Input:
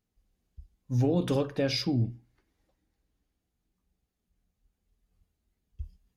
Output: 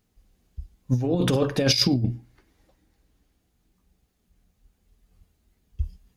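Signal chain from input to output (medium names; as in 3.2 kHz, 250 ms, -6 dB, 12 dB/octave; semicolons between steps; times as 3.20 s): 1.56–2.04 s: tone controls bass +1 dB, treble +10 dB; compressor with a negative ratio -28 dBFS, ratio -0.5; trim +8 dB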